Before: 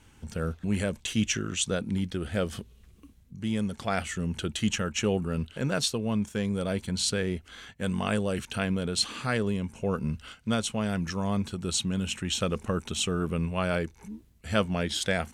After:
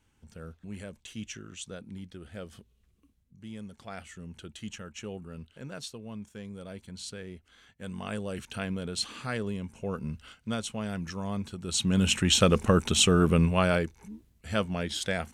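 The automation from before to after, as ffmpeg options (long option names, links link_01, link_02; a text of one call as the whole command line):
ffmpeg -i in.wav -af "volume=7dB,afade=type=in:start_time=7.6:duration=0.92:silence=0.398107,afade=type=in:start_time=11.67:duration=0.4:silence=0.251189,afade=type=out:start_time=13.36:duration=0.64:silence=0.316228" out.wav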